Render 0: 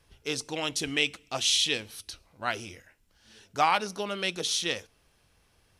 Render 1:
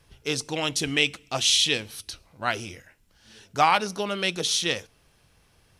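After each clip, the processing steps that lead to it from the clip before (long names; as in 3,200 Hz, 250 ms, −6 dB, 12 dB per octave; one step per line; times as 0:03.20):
parametric band 140 Hz +4 dB 0.77 octaves
level +4 dB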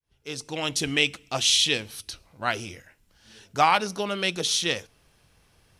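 fade in at the beginning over 0.76 s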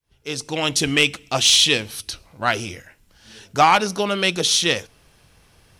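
sine wavefolder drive 3 dB, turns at −5.5 dBFS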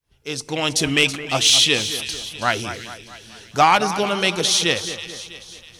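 echo with a time of its own for lows and highs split 2,100 Hz, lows 217 ms, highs 324 ms, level −11.5 dB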